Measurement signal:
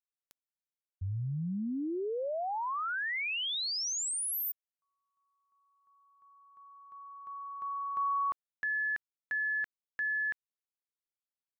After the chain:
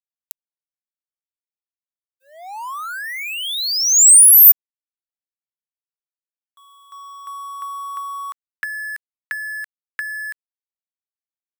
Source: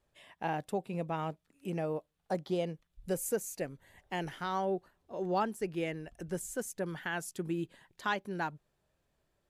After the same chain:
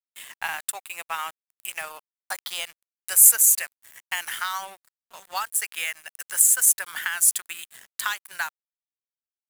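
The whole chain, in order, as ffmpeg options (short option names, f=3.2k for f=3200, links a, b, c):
-filter_complex "[0:a]highpass=f=1.2k:w=0.5412,highpass=f=1.2k:w=1.3066,acrossover=split=5400[a][b];[a]acompressor=threshold=-47dB:ratio=12:attack=63:release=114:knee=6:detection=rms[c];[c][b]amix=inputs=2:normalize=0,apsyclip=30dB,aeval=exprs='sgn(val(0))*max(abs(val(0))-0.0282,0)':c=same,aexciter=amount=3.6:drive=5.1:freq=7.5k,volume=-10.5dB"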